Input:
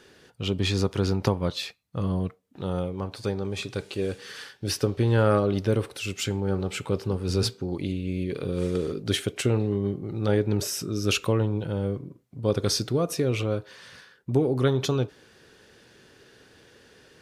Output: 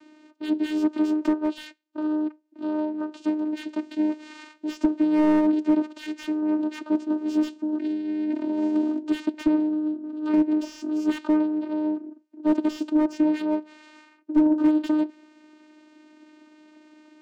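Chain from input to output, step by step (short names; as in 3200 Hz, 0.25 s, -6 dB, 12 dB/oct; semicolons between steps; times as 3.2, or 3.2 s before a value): 9.68–10.33 fixed phaser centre 2400 Hz, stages 6; vocoder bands 8, saw 306 Hz; slew limiter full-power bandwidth 44 Hz; gain +3.5 dB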